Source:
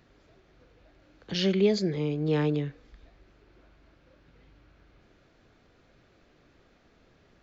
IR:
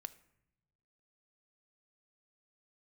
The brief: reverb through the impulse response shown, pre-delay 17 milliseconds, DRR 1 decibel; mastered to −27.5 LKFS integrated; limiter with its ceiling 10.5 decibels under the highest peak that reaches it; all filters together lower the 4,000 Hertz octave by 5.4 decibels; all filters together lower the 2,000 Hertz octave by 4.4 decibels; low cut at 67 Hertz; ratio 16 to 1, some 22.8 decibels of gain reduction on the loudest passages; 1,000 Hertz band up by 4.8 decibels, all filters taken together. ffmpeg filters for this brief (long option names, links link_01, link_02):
-filter_complex "[0:a]highpass=67,equalizer=frequency=1000:width_type=o:gain=7.5,equalizer=frequency=2000:width_type=o:gain=-6,equalizer=frequency=4000:width_type=o:gain=-5.5,acompressor=threshold=-40dB:ratio=16,alimiter=level_in=15dB:limit=-24dB:level=0:latency=1,volume=-15dB,asplit=2[link_01][link_02];[1:a]atrim=start_sample=2205,adelay=17[link_03];[link_02][link_03]afir=irnorm=-1:irlink=0,volume=3.5dB[link_04];[link_01][link_04]amix=inputs=2:normalize=0,volume=23.5dB"